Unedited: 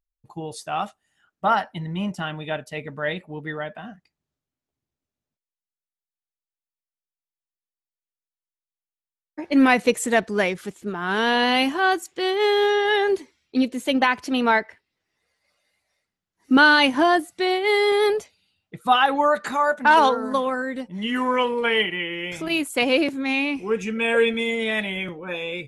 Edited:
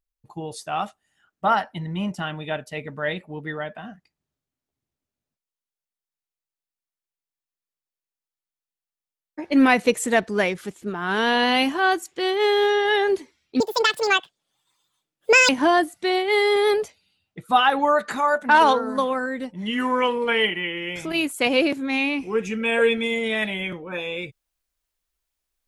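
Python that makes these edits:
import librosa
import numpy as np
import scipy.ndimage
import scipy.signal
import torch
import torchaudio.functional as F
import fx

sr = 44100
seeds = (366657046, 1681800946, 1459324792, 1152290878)

y = fx.edit(x, sr, fx.speed_span(start_s=13.6, length_s=3.25, speed=1.72), tone=tone)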